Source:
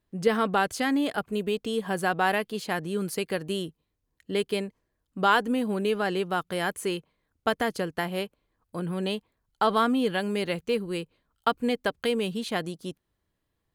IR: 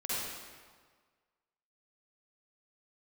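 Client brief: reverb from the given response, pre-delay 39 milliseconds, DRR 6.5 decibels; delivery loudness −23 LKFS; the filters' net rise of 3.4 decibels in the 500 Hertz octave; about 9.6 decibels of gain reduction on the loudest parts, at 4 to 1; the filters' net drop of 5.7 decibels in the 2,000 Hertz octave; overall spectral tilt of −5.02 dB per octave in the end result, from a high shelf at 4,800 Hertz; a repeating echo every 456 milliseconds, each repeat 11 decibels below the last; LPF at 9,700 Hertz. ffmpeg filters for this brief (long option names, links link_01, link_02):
-filter_complex "[0:a]lowpass=9700,equalizer=frequency=500:width_type=o:gain=4.5,equalizer=frequency=2000:width_type=o:gain=-7.5,highshelf=frequency=4800:gain=-5.5,acompressor=threshold=-25dB:ratio=4,aecho=1:1:456|912|1368:0.282|0.0789|0.0221,asplit=2[link_01][link_02];[1:a]atrim=start_sample=2205,adelay=39[link_03];[link_02][link_03]afir=irnorm=-1:irlink=0,volume=-12dB[link_04];[link_01][link_04]amix=inputs=2:normalize=0,volume=7dB"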